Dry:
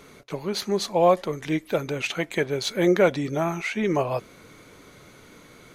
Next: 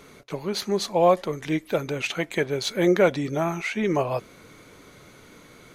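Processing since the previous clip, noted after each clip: nothing audible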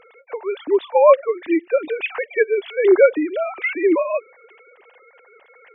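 sine-wave speech; gain +6 dB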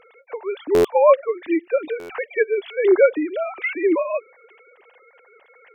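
stuck buffer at 0.74/1.99, samples 512, times 8; gain -2 dB

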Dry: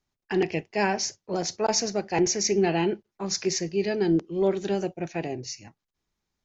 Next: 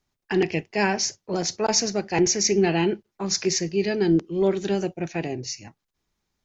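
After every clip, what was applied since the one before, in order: dynamic EQ 660 Hz, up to -4 dB, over -37 dBFS, Q 1; gain +4 dB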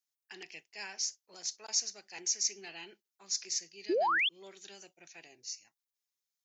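differentiator; painted sound rise, 3.89–4.29, 310–3600 Hz -22 dBFS; gain -6.5 dB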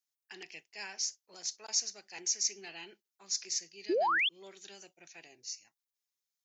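nothing audible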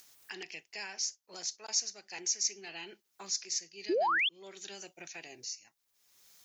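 upward compressor, threshold -37 dBFS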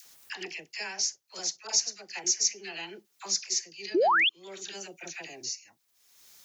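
dispersion lows, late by 59 ms, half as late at 920 Hz; gain +5.5 dB

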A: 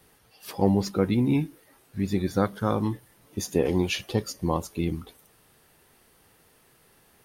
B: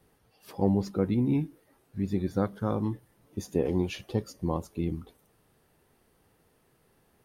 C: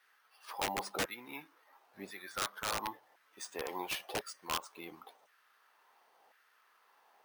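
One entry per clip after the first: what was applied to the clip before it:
tilt shelf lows +4.5 dB, about 1100 Hz; gain -7 dB
LFO high-pass saw down 0.95 Hz 700–1600 Hz; careless resampling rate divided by 3×, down filtered, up hold; wrapped overs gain 28 dB; gain +1 dB

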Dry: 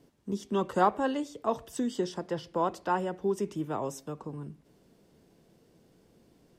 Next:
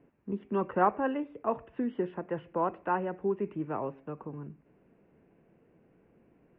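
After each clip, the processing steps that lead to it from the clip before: Chebyshev low-pass 2600 Hz, order 5; low shelf 130 Hz -4.5 dB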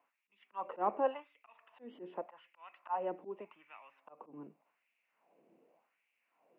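auto swell 0.153 s; LFO high-pass sine 0.86 Hz 330–2400 Hz; fifteen-band EQ 100 Hz -7 dB, 400 Hz -11 dB, 1600 Hz -11 dB; gain -1 dB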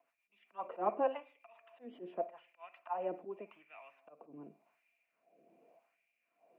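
rotary speaker horn 7.5 Hz, later 1 Hz, at 3.04; small resonant body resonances 680/2400 Hz, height 14 dB, ringing for 70 ms; reverb, pre-delay 53 ms, DRR 18.5 dB; gain +1 dB

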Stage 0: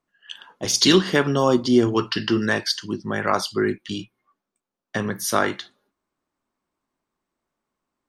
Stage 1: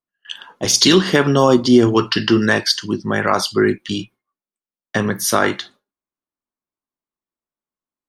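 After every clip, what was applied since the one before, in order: gate with hold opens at -46 dBFS; maximiser +7.5 dB; gain -1 dB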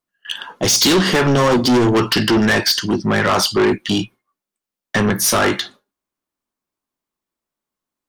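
soft clip -18.5 dBFS, distortion -5 dB; gain +7.5 dB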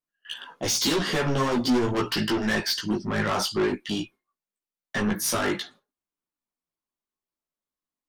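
chorus voices 6, 0.72 Hz, delay 16 ms, depth 3.9 ms; gain -7 dB

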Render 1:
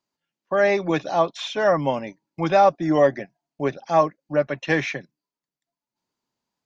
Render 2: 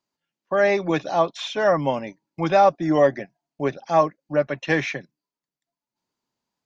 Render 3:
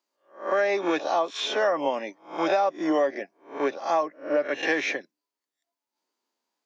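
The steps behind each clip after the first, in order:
nothing audible
spectral swells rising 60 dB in 0.37 s; HPF 280 Hz 24 dB/oct; compressor 6:1, threshold -20 dBFS, peak gain reduction 9 dB

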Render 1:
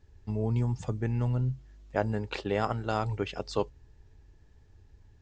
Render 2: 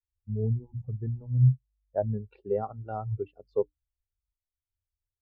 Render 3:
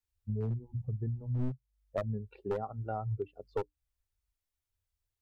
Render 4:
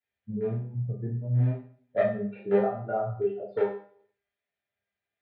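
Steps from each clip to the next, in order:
notches 60/120/180/240/300 Hz; spectral expander 2.5:1
one-sided fold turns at -24 dBFS; compressor 3:1, threshold -37 dBFS, peak gain reduction 15 dB; gain +3.5 dB
speaker cabinet 150–3300 Hz, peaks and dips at 250 Hz -5 dB, 350 Hz -9 dB, 660 Hz +10 dB, 1100 Hz -9 dB, 1700 Hz +5 dB; resonator 200 Hz, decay 0.42 s, harmonics all, mix 80%; reverb RT60 0.45 s, pre-delay 3 ms, DRR -9.5 dB; gain +5 dB

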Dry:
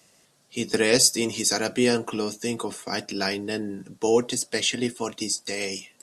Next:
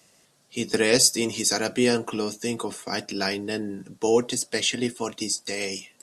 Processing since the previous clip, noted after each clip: nothing audible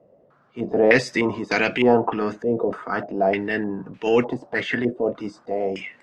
transient shaper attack -8 dB, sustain +3 dB; stepped low-pass 3.3 Hz 550–2500 Hz; gain +4 dB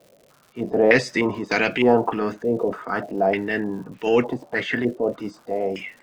crackle 180/s -41 dBFS

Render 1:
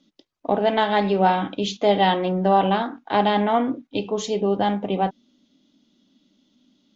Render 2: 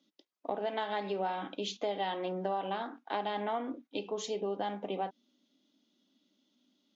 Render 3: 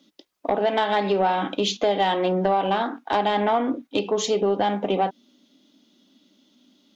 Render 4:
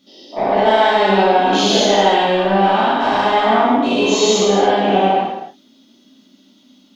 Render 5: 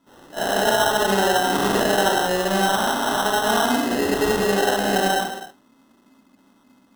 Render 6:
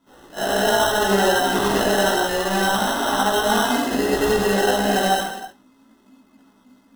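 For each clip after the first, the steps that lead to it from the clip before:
HPF 280 Hz 12 dB/oct; compressor 5:1, threshold -22 dBFS, peak gain reduction 9 dB; gain -8.5 dB
low shelf 90 Hz +7.5 dB; in parallel at -11 dB: sine folder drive 7 dB, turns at -18 dBFS; on the sum: gain +7.5 dB
spectral dilation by 0.24 s; non-linear reverb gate 0.35 s falling, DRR -7.5 dB; gain -5.5 dB
sample-and-hold 19×; gain -6 dB
chorus voices 6, 0.65 Hz, delay 17 ms, depth 2.7 ms; gain +3.5 dB

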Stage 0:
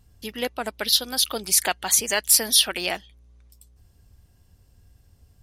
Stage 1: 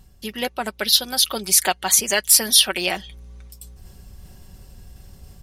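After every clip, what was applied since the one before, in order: comb 5.3 ms, depth 46%; reverse; upward compressor, threshold -33 dBFS; reverse; gain +2.5 dB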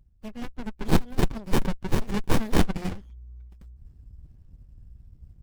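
per-bin expansion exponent 1.5; dynamic EQ 3600 Hz, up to +4 dB, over -29 dBFS, Q 1.2; running maximum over 65 samples; gain -1 dB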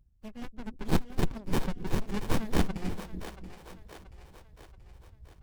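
split-band echo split 380 Hz, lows 0.289 s, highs 0.68 s, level -11 dB; gain -5.5 dB

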